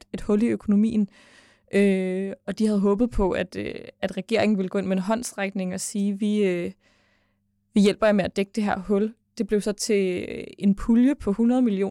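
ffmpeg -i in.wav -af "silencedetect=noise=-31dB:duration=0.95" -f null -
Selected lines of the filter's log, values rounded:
silence_start: 6.70
silence_end: 7.76 | silence_duration: 1.06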